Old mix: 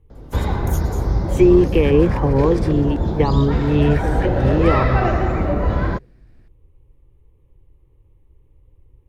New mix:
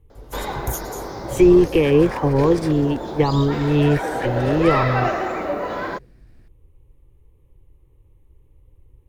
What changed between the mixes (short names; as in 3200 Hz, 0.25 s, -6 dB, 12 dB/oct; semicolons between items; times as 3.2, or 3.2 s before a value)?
first sound: add HPF 390 Hz 12 dB/oct; master: add high shelf 5400 Hz +7.5 dB